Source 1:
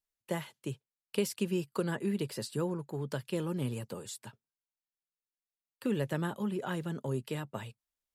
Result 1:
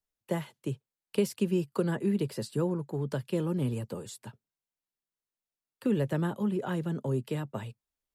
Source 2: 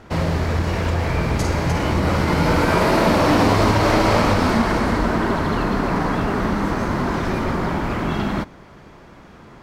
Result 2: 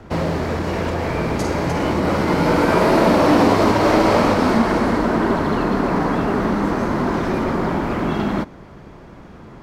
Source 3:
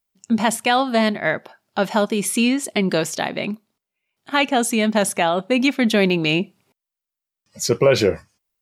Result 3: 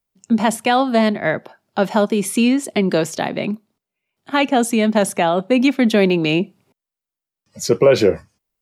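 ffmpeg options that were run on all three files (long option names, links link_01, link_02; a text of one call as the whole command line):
ffmpeg -i in.wav -filter_complex "[0:a]tiltshelf=frequency=870:gain=3.5,acrossover=split=190|490|4800[link_01][link_02][link_03][link_04];[link_01]acompressor=threshold=-30dB:ratio=5[link_05];[link_05][link_02][link_03][link_04]amix=inputs=4:normalize=0,volume=1.5dB" out.wav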